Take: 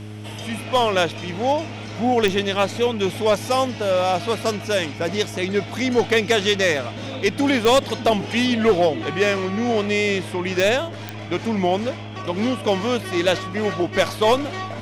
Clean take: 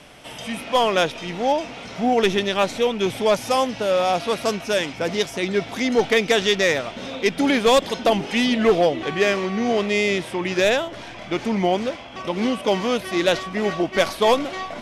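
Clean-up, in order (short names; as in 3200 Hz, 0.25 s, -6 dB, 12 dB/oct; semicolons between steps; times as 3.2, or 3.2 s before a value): de-click; de-hum 105.6 Hz, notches 4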